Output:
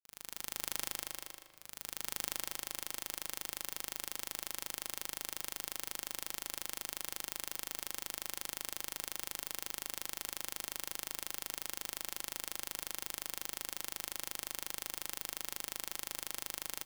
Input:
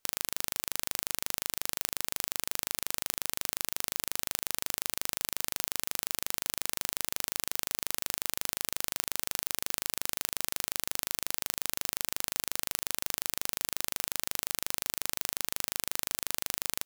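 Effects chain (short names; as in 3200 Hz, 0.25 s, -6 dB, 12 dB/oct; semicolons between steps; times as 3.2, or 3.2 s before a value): opening faded in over 2.54 s; wavefolder -13.5 dBFS; speakerphone echo 0.16 s, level -8 dB; shoebox room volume 3100 m³, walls mixed, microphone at 0.76 m; gain +6.5 dB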